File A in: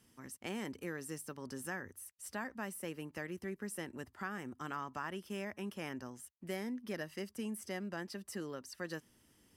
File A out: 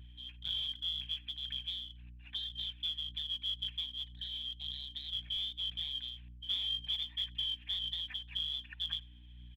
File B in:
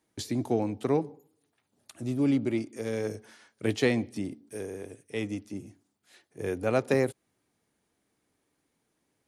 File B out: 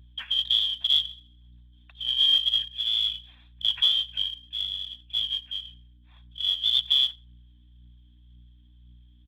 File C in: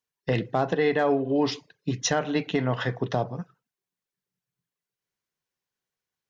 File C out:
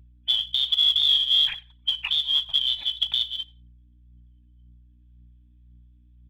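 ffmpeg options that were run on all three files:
-filter_complex "[0:a]afftfilt=real='real(if(lt(b,272),68*(eq(floor(b/68),0)*2+eq(floor(b/68),1)*3+eq(floor(b/68),2)*0+eq(floor(b/68),3)*1)+mod(b,68),b),0)':imag='imag(if(lt(b,272),68*(eq(floor(b/68),0)*2+eq(floor(b/68),1)*3+eq(floor(b/68),2)*0+eq(floor(b/68),3)*1)+mod(b,68),b),0)':win_size=2048:overlap=0.75,aecho=1:1:1.2:0.44,aeval=exprs='val(0)+0.00501*(sin(2*PI*60*n/s)+sin(2*PI*2*60*n/s)/2+sin(2*PI*3*60*n/s)/3+sin(2*PI*4*60*n/s)/4+sin(2*PI*5*60*n/s)/5)':c=same,highshelf=f=2.9k:g=8.5,asplit=2[a][b];[b]alimiter=limit=-13.5dB:level=0:latency=1:release=137,volume=1dB[c];[a][c]amix=inputs=2:normalize=0,aresample=8000,aresample=44100,equalizer=f=370:w=0.96:g=-11,asplit=2[d][e];[e]adelay=88,lowpass=f=3.1k:p=1,volume=-23dB,asplit=2[f][g];[g]adelay=88,lowpass=f=3.1k:p=1,volume=0.22[h];[f][h]amix=inputs=2:normalize=0[i];[d][i]amix=inputs=2:normalize=0,acrossover=split=130|280|1100[j][k][l][m];[j]acompressor=threshold=-46dB:ratio=4[n];[k]acompressor=threshold=-60dB:ratio=4[o];[l]acompressor=threshold=-58dB:ratio=4[p];[n][o][p][m]amix=inputs=4:normalize=0,aphaser=in_gain=1:out_gain=1:delay=4.1:decay=0.4:speed=1.9:type=triangular,volume=-8.5dB"

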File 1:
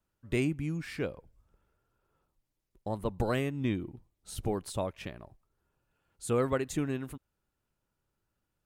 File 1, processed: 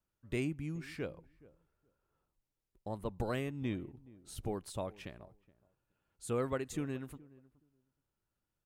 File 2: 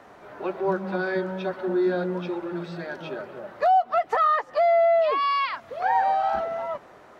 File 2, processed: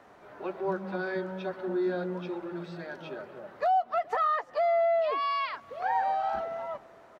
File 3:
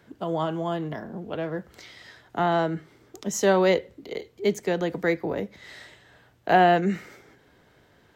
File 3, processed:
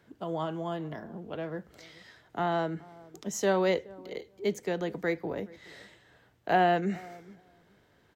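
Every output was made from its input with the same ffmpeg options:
-filter_complex "[0:a]asplit=2[a][b];[b]adelay=422,lowpass=f=880:p=1,volume=-20.5dB,asplit=2[c][d];[d]adelay=422,lowpass=f=880:p=1,volume=0.16[e];[a][c][e]amix=inputs=3:normalize=0,volume=-6dB"

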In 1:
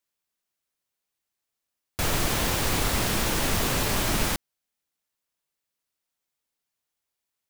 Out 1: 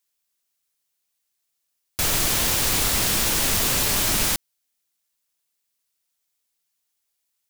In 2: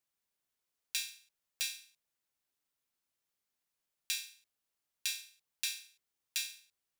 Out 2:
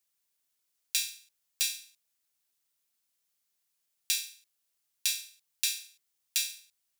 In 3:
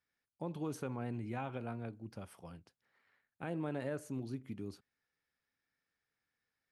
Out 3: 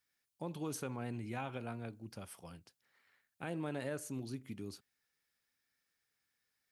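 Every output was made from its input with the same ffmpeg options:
-af "highshelf=f=2.7k:g=10.5,volume=-1.5dB"

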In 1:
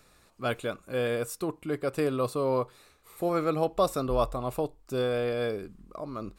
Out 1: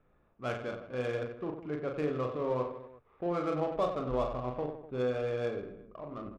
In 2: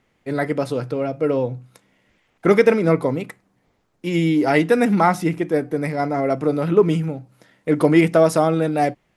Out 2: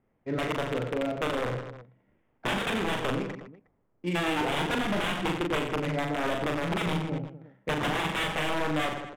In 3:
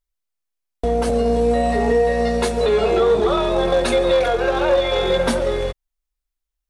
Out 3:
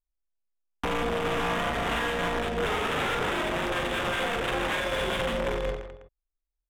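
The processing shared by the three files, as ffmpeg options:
-af "aeval=exprs='(mod(4.47*val(0)+1,2)-1)/4.47':c=same,aecho=1:1:40|92|159.6|247.5|361.7:0.631|0.398|0.251|0.158|0.1,aresample=8000,aresample=44100,adynamicsmooth=sensitivity=4.5:basefreq=1.3k,alimiter=limit=-13.5dB:level=0:latency=1:release=173,volume=-6.5dB" -ar 48000 -c:a aac -b:a 192k

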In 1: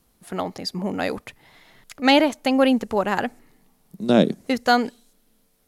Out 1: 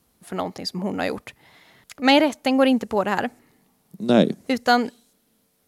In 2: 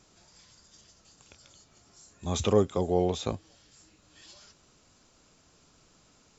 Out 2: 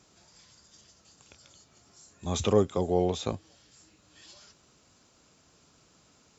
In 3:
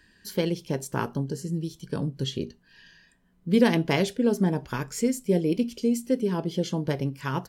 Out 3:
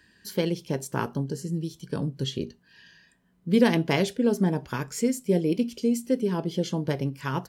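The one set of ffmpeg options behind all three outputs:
-af "highpass=58"

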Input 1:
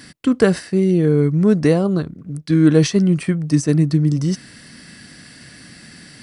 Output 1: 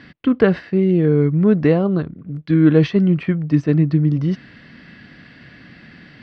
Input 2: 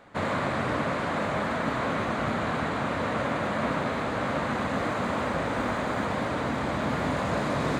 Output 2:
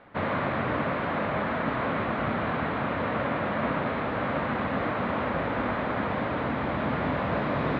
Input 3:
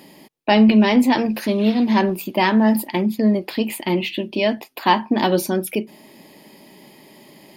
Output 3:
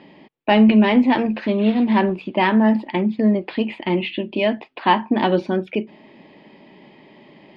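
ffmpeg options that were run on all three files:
-af "lowpass=f=3.3k:w=0.5412,lowpass=f=3.3k:w=1.3066"

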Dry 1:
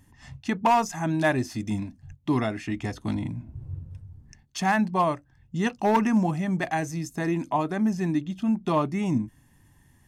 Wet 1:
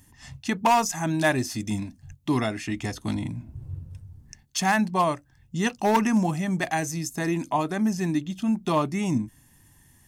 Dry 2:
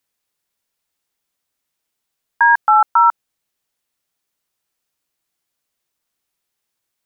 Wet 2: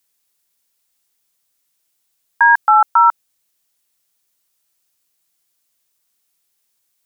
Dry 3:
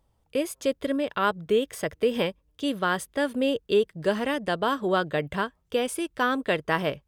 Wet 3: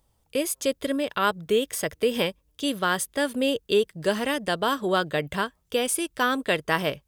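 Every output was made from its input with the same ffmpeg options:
-af "highshelf=f=3.8k:g=10.5"

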